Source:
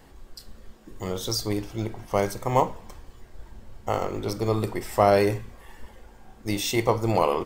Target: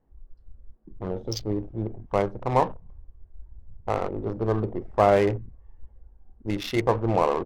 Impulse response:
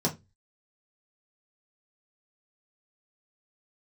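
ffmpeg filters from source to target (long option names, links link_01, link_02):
-af "afwtdn=0.02,adynamicsmooth=sensitivity=4:basefreq=1000"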